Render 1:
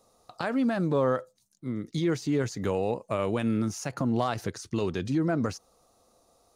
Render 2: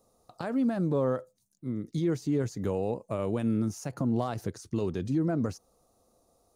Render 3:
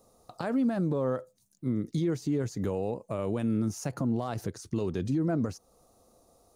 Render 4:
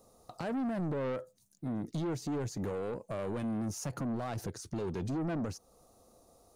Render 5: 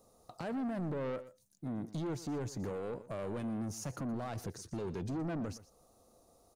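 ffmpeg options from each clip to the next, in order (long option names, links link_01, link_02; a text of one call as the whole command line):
ffmpeg -i in.wav -af "equalizer=frequency=2500:width=0.35:gain=-9.5" out.wav
ffmpeg -i in.wav -af "alimiter=level_in=1.5dB:limit=-24dB:level=0:latency=1:release=337,volume=-1.5dB,volume=5dB" out.wav
ffmpeg -i in.wav -af "asoftclip=type=tanh:threshold=-31dB" out.wav
ffmpeg -i in.wav -af "aecho=1:1:120:0.15,volume=-3dB" out.wav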